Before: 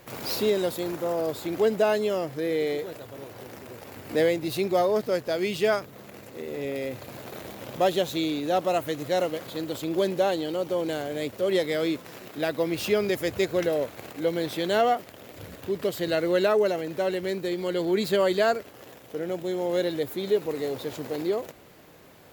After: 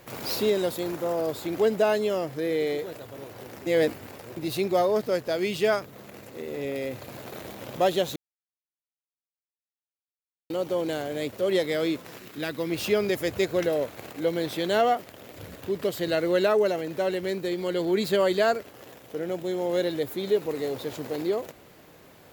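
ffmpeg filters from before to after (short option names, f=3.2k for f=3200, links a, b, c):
-filter_complex "[0:a]asettb=1/sr,asplit=3[a][b][c];[a]atrim=end=12.174[d];[b]atrim=start=12.17:end=12.7,asetpts=PTS-STARTPTS,afade=t=in:d=0.004:c=qsin,afade=t=out:st=0.526:d=0.004:c=qsin,equalizer=f=660:w=1.4:g=-8.5[e];[c]atrim=start=12.696[f];[d][e]acrossfade=d=0.004:c1=hsin:c2=qsin[g];[g][f]acrossfade=d=0.004:c1=qsin:c2=hsin,asplit=5[h][i][j][k][l];[h]atrim=end=3.662[m];[i]atrim=start=3.658:end=4.372,asetpts=PTS-STARTPTS,areverse[n];[j]atrim=start=4.368:end=8.16,asetpts=PTS-STARTPTS,afade=t=out:st=3.788:d=0.004:c=hsin[o];[k]atrim=start=8.16:end=10.5,asetpts=PTS-STARTPTS,volume=0[p];[l]atrim=start=10.5,asetpts=PTS-STARTPTS,afade=t=in:d=0.004:c=hsin[q];[m][n]acrossfade=d=0.004:c1=hsin:c2=hsin[r];[o][p][q]concat=n=3:v=0:a=1[s];[r][s]acrossfade=d=0.004:c1=hsin:c2=hsin"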